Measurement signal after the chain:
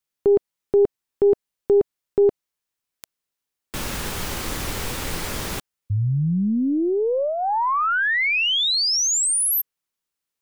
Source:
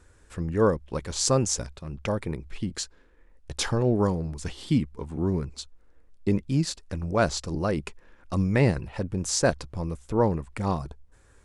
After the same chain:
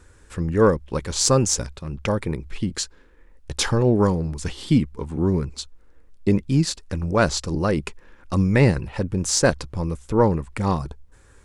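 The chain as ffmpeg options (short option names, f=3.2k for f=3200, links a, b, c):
-af "equalizer=f=670:t=o:w=0.26:g=-5,aeval=exprs='0.501*(cos(1*acos(clip(val(0)/0.501,-1,1)))-cos(1*PI/2))+0.02*(cos(6*acos(clip(val(0)/0.501,-1,1)))-cos(6*PI/2))+0.00708*(cos(8*acos(clip(val(0)/0.501,-1,1)))-cos(8*PI/2))':c=same,volume=5.5dB"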